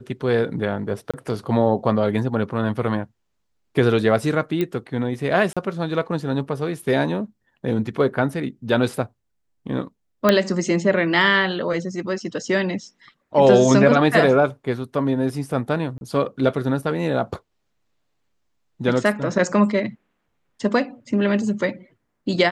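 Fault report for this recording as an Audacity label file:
1.110000	1.140000	dropout 26 ms
4.610000	4.610000	pop -11 dBFS
5.530000	5.570000	dropout 36 ms
10.290000	10.290000	pop -3 dBFS
15.980000	16.010000	dropout 31 ms

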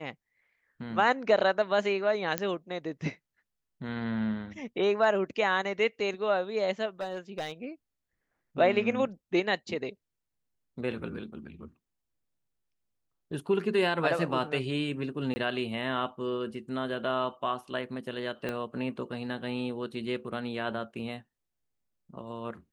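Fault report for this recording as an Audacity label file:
2.380000	2.380000	pop -11 dBFS
7.010000	7.520000	clipped -29.5 dBFS
15.340000	15.360000	dropout 20 ms
18.490000	18.490000	pop -20 dBFS

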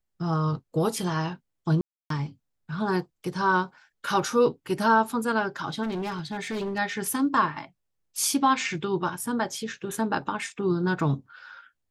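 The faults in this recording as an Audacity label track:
1.810000	2.100000	dropout 293 ms
5.820000	6.790000	clipped -27 dBFS

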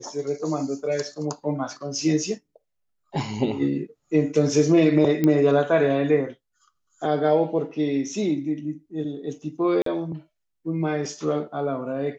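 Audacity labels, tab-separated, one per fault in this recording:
5.240000	5.240000	pop -10 dBFS
9.820000	9.860000	dropout 43 ms

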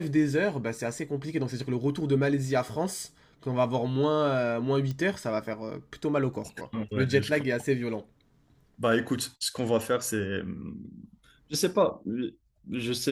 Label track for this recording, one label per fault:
4.910000	4.910000	pop -23 dBFS

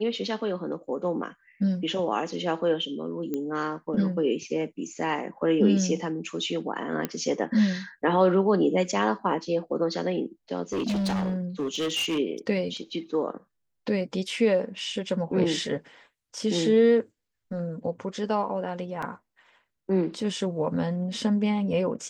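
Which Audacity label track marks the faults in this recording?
3.340000	3.340000	pop -18 dBFS
7.050000	7.050000	pop -13 dBFS
10.720000	12.190000	clipped -24 dBFS
19.020000	19.020000	dropout 4.9 ms

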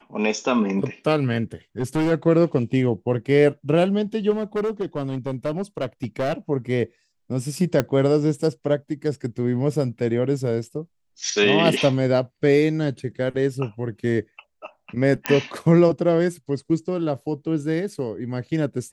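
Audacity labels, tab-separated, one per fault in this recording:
1.790000	2.120000	clipped -18 dBFS
4.300000	6.340000	clipped -20 dBFS
7.800000	7.800000	pop -6 dBFS
15.260000	15.260000	pop -5 dBFS

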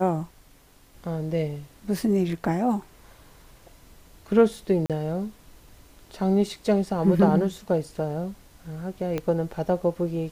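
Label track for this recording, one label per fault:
4.860000	4.900000	dropout 37 ms
9.180000	9.180000	pop -15 dBFS

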